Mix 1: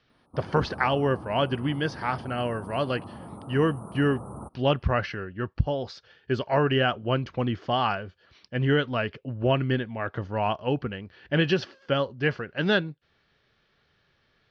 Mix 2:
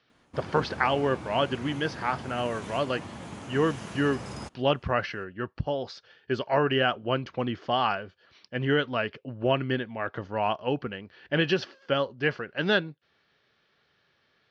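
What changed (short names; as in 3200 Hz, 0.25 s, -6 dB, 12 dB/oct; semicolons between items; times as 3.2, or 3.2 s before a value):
speech: add HPF 220 Hz 6 dB/oct; background: remove Chebyshev band-stop 1300–8800 Hz, order 5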